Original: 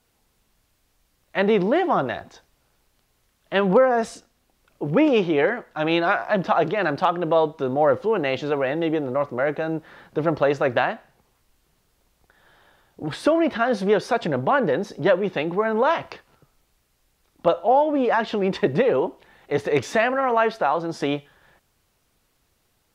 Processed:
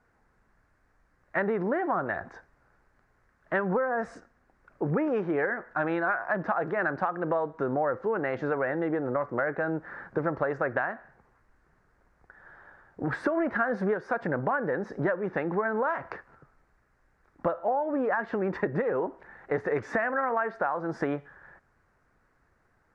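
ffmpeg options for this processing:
-filter_complex "[0:a]asplit=3[a][b][c];[a]afade=t=out:st=13.36:d=0.02[d];[b]acontrast=32,afade=t=in:st=13.36:d=0.02,afade=t=out:st=13.93:d=0.02[e];[c]afade=t=in:st=13.93:d=0.02[f];[d][e][f]amix=inputs=3:normalize=0,lowpass=7.1k,highshelf=f=2.3k:t=q:w=3:g=-11.5,acompressor=threshold=-25dB:ratio=6"

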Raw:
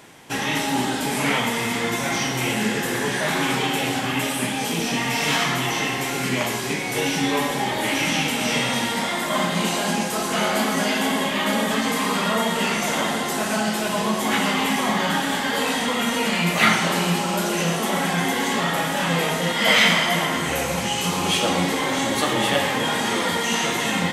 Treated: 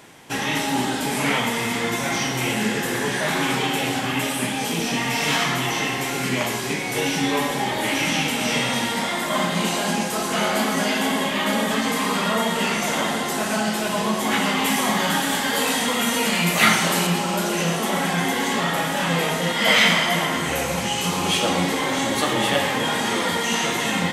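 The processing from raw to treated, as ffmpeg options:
-filter_complex "[0:a]asettb=1/sr,asplit=3[a][b][c];[a]atrim=end=14.644[d];[b]atrim=start=14.64:end=17.07,asetpts=PTS-STARTPTS,afade=t=in:d=0.004:c=qsin,afade=t=out:st=2.426:d=0.004:c=qsin,highshelf=f=6.3k:g=8.5[e];[c]atrim=start=17.066[f];[d][e]acrossfade=d=0.004:c1=hsin:c2=qsin[g];[g][f]acrossfade=d=0.004:c1=qsin:c2=hsin"

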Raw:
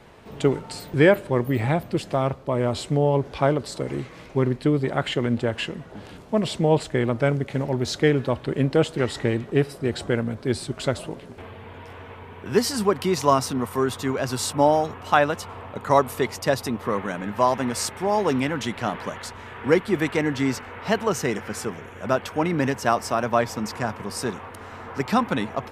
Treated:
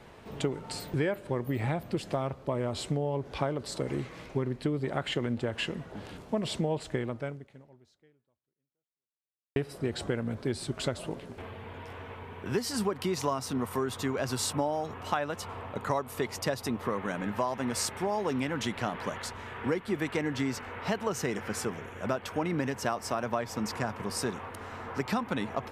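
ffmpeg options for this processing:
-filter_complex "[0:a]asplit=2[a][b];[a]atrim=end=9.56,asetpts=PTS-STARTPTS,afade=t=out:st=6.94:d=2.62:c=exp[c];[b]atrim=start=9.56,asetpts=PTS-STARTPTS,afade=t=in:d=0.004:c=hsin[d];[c][d]concat=n=2:v=0:a=1,acompressor=threshold=-24dB:ratio=6,volume=-2.5dB"

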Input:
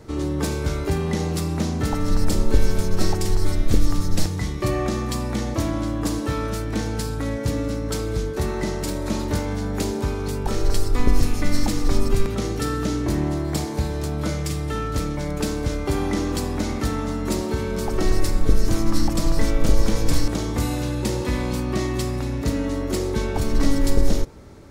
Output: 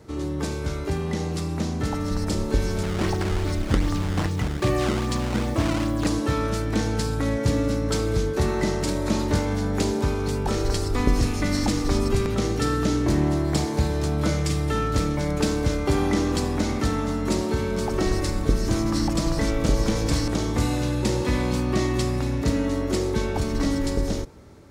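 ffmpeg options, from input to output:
-filter_complex "[0:a]asettb=1/sr,asplit=3[a][b][c];[a]atrim=end=2.834[d];[b]atrim=start=2.83:end=6.07,asetpts=PTS-STARTPTS,afade=t=in:d=0.004:c=qsin,afade=t=out:st=3.236:d=0.004:c=qsin,acrusher=samples=15:mix=1:aa=0.000001:lfo=1:lforange=24:lforate=2.5[e];[c]atrim=start=6.066[f];[d][e]acrossfade=d=0.004:c1=hsin:c2=qsin[g];[g][f]acrossfade=d=0.004:c1=qsin:c2=hsin,acrossover=split=9400[h][i];[i]acompressor=threshold=-53dB:ratio=4:attack=1:release=60[j];[h][j]amix=inputs=2:normalize=0,highpass=44,dynaudnorm=f=740:g=7:m=7dB,volume=-3.5dB"

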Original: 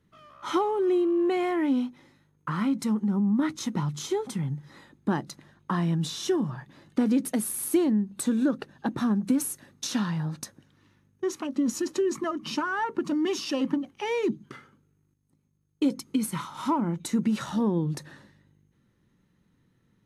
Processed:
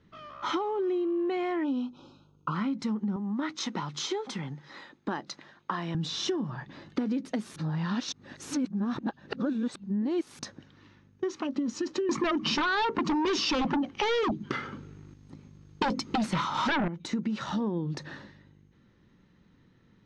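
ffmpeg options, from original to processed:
-filter_complex "[0:a]asplit=3[a][b][c];[a]afade=t=out:st=1.63:d=0.02[d];[b]asuperstop=centerf=1900:order=12:qfactor=1.9,afade=t=in:st=1.63:d=0.02,afade=t=out:st=2.54:d=0.02[e];[c]afade=t=in:st=2.54:d=0.02[f];[d][e][f]amix=inputs=3:normalize=0,asettb=1/sr,asplit=3[g][h][i];[g]atrim=end=3.164[j];[h]atrim=start=3.16:end=5.95,asetpts=PTS-STARTPTS,afade=t=in:d=0.004:c=qsin,afade=t=out:st=2.786:d=0.004:c=qsin,highpass=f=570:p=1[k];[i]atrim=start=5.946[l];[j][k]acrossfade=d=0.004:c1=hsin:c2=qsin[m];[m][l]acrossfade=d=0.004:c1=qsin:c2=hsin,asettb=1/sr,asplit=3[n][o][p];[n]atrim=end=12.094[q];[o]atrim=start=12.09:end=16.88,asetpts=PTS-STARTPTS,afade=t=in:d=0.004:c=qsin,afade=t=out:st=4.786:d=0.004:c=qsin,aeval=exprs='0.2*sin(PI/2*3.98*val(0)/0.2)':c=same[r];[p]atrim=start=16.876[s];[q][r]acrossfade=d=0.004:c1=hsin:c2=qsin[t];[t][s]acrossfade=d=0.004:c1=qsin:c2=hsin,asplit=3[u][v][w];[u]atrim=end=7.562[x];[v]atrim=start=7.558:end=10.392,asetpts=PTS-STARTPTS,areverse[y];[w]atrim=start=10.388[z];[x][y]acrossfade=d=0.004:c1=hsin:c2=hsin[aa];[aa][z]acrossfade=d=0.004:c1=hsin:c2=hsin,lowpass=f=5.6k:w=0.5412,lowpass=f=5.6k:w=1.3066,equalizer=f=130:w=1.8:g=-3,acompressor=threshold=-36dB:ratio=4,volume=6.5dB"

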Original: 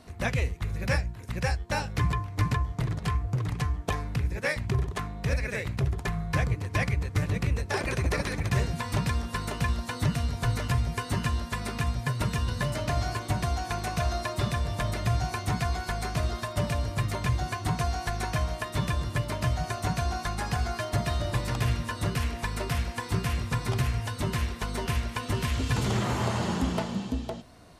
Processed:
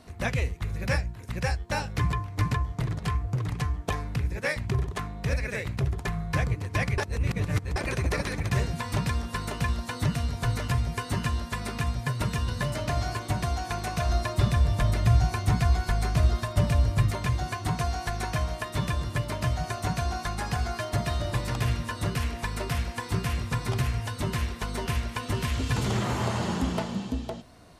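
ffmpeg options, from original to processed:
-filter_complex "[0:a]asettb=1/sr,asplit=3[a][b][c];[a]atrim=end=14.094[d];[b]atrim=start=14.09:end=17.11,asetpts=PTS-STARTPTS,afade=t=in:d=0.004:c=qsin,afade=t=out:st=3.016:d=0.004:c=qsin,lowshelf=f=130:g=10[e];[c]atrim=start=17.106[f];[d][e]acrossfade=d=0.004:c1=hsin:c2=qsin[g];[g][f]acrossfade=d=0.004:c1=qsin:c2=hsin,asplit=3[h][i][j];[h]atrim=end=6.982[k];[i]atrim=start=6.978:end=7.762,asetpts=PTS-STARTPTS,areverse[l];[j]atrim=start=7.758[m];[k][l]acrossfade=d=0.004:c1=hsin:c2=hsin[n];[n][m]acrossfade=d=0.004:c1=hsin:c2=hsin"

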